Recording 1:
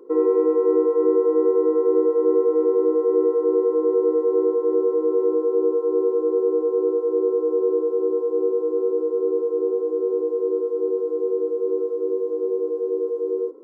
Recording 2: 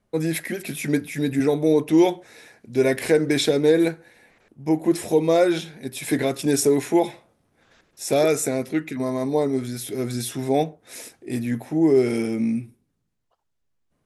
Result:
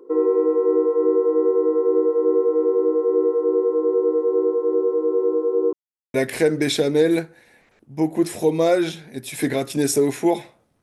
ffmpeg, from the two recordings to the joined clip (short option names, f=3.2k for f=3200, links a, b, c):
-filter_complex "[0:a]apad=whole_dur=10.82,atrim=end=10.82,asplit=2[a][b];[a]atrim=end=5.73,asetpts=PTS-STARTPTS,afade=t=out:st=5.726:d=0.004:c=hsin[c];[b]atrim=start=5.73:end=6.14,asetpts=PTS-STARTPTS,volume=0[d];[1:a]atrim=start=2.83:end=7.51,asetpts=PTS-STARTPTS,afade=t=in:d=0.004:c=hsin[e];[c][d][e]concat=n=3:v=0:a=1"